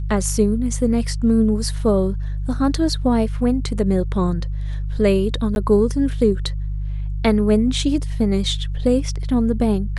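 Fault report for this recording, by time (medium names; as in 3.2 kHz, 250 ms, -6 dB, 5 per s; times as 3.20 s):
hum 50 Hz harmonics 3 -24 dBFS
5.55–5.56 s: dropout 11 ms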